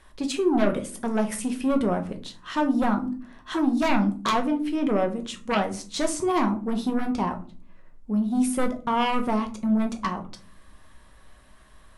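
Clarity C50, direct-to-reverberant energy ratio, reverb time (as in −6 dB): 14.0 dB, 4.5 dB, 0.40 s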